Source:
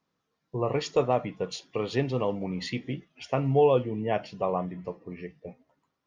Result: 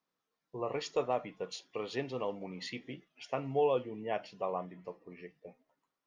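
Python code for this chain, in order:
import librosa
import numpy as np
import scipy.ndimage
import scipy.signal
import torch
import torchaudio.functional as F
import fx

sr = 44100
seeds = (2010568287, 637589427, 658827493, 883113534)

y = fx.peak_eq(x, sr, hz=68.0, db=-14.0, octaves=2.9)
y = y * librosa.db_to_amplitude(-6.0)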